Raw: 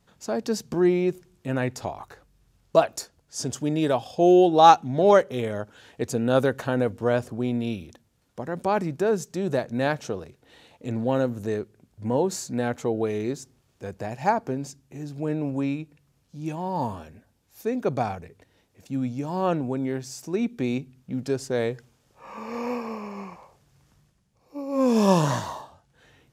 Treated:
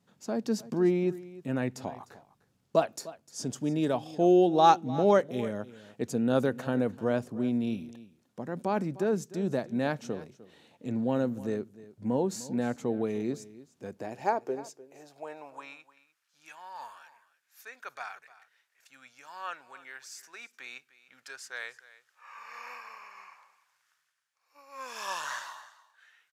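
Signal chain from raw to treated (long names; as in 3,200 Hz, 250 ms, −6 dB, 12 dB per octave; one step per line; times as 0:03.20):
low shelf with overshoot 150 Hz +6 dB, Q 1.5
high-pass filter sweep 210 Hz → 1,500 Hz, 0:13.78–0:16.02
single-tap delay 302 ms −18 dB
level −7 dB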